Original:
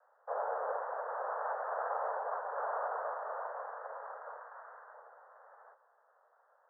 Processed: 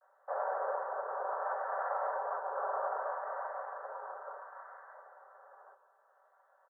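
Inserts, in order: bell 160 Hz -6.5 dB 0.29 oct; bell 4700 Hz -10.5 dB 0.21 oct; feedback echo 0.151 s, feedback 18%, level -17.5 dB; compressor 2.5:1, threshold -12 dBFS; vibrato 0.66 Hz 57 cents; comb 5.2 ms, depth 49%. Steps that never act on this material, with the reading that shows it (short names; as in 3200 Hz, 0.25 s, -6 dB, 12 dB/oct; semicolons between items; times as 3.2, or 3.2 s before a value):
bell 160 Hz: input band starts at 360 Hz; bell 4700 Hz: input band ends at 1900 Hz; compressor, threshold -12 dBFS: input peak -24.0 dBFS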